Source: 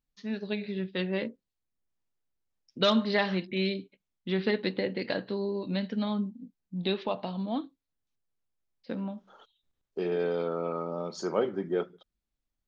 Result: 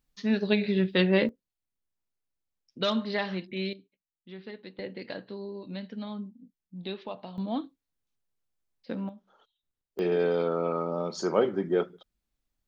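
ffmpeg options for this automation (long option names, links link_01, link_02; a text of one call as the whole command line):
ffmpeg -i in.wav -af "asetnsamples=nb_out_samples=441:pad=0,asendcmd='1.29 volume volume -3.5dB;3.73 volume volume -15dB;4.79 volume volume -7dB;7.38 volume volume 0.5dB;9.09 volume volume -8dB;9.99 volume volume 3.5dB',volume=8dB" out.wav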